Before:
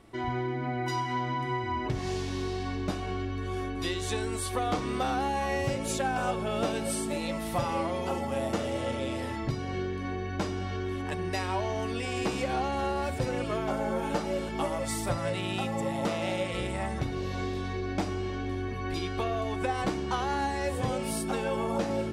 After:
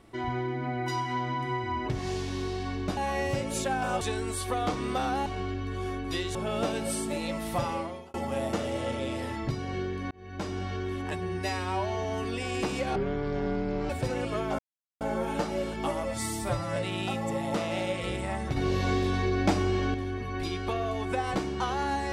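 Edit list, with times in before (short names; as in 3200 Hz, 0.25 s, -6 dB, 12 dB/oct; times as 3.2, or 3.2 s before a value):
2.97–4.06 swap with 5.31–6.35
7.65–8.14 fade out
10.11–10.57 fade in
11.12–11.87 stretch 1.5×
12.58–13.07 speed 52%
13.76 insert silence 0.42 s
14.78–15.27 stretch 1.5×
17.07–18.45 gain +6 dB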